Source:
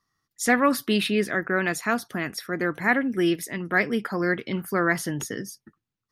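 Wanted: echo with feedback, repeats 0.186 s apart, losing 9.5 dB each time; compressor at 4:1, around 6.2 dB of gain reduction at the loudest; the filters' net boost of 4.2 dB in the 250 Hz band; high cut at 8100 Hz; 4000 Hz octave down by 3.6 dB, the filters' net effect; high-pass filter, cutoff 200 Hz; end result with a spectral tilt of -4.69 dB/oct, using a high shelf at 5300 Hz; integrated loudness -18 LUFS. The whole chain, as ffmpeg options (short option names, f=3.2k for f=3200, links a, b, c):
-af "highpass=200,lowpass=8.1k,equalizer=f=250:t=o:g=7.5,equalizer=f=4k:t=o:g=-8.5,highshelf=f=5.3k:g=8,acompressor=threshold=-20dB:ratio=4,aecho=1:1:186|372|558|744:0.335|0.111|0.0365|0.012,volume=8dB"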